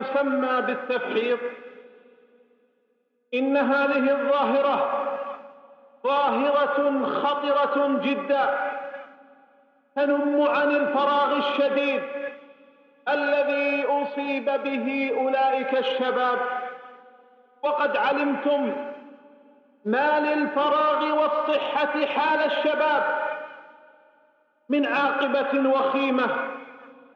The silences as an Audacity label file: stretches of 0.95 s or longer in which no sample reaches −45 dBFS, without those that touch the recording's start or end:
2.100000	3.320000	silence